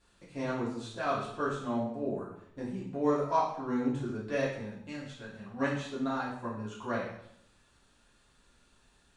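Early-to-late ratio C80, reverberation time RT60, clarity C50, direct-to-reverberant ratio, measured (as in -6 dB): 6.5 dB, 0.70 s, 3.5 dB, -9.0 dB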